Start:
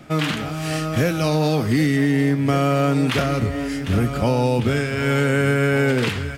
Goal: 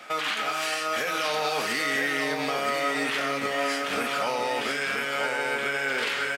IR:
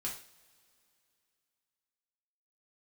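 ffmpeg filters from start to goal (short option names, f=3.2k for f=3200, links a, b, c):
-filter_complex "[0:a]highpass=650,equalizer=f=2.1k:w=0.33:g=5,alimiter=limit=-20dB:level=0:latency=1:release=81,aecho=1:1:972:0.596,asplit=2[a][b];[1:a]atrim=start_sample=2205[c];[b][c]afir=irnorm=-1:irlink=0,volume=-3dB[d];[a][d]amix=inputs=2:normalize=0,volume=-2.5dB"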